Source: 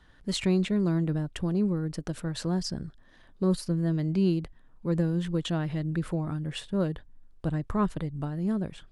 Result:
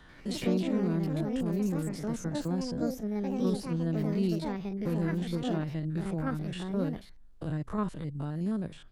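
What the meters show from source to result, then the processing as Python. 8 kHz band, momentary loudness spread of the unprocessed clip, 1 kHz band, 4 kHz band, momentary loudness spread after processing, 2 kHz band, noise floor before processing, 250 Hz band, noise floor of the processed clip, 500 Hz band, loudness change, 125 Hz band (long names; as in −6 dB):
−4.0 dB, 8 LU, −1.5 dB, −6.0 dB, 6 LU, −2.5 dB, −57 dBFS, −2.0 dB, −51 dBFS, −2.0 dB, −2.5 dB, −3.5 dB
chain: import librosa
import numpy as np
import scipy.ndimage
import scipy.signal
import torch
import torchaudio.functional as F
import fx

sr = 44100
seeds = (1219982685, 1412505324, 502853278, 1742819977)

y = fx.spec_steps(x, sr, hold_ms=50)
y = fx.echo_pitch(y, sr, ms=89, semitones=4, count=2, db_per_echo=-3.0)
y = fx.band_squash(y, sr, depth_pct=40)
y = y * librosa.db_to_amplitude(-4.0)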